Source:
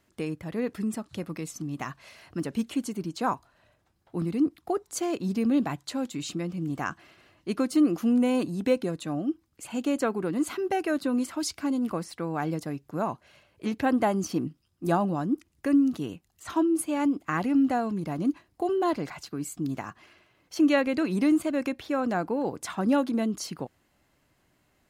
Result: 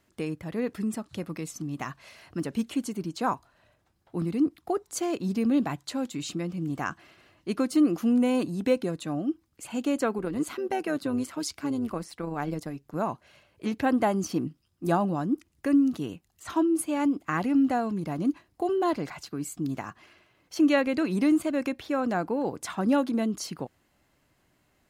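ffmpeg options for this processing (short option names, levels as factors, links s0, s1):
-filter_complex "[0:a]asettb=1/sr,asplit=3[s0][s1][s2];[s0]atrim=end=10.184[s3];[s1]atrim=start=10.18:end=12.96,asetpts=PTS-STARTPTS,afade=t=in:d=0.004:c=qsin,afade=t=out:st=2.776:d=0.004:c=qsin,tremolo=f=140:d=0.462[s4];[s2]atrim=start=12.956[s5];[s3][s4]acrossfade=d=0.004:c1=hsin:c2=qsin[s6];[s6][s5]acrossfade=d=0.004:c1=qsin:c2=hsin"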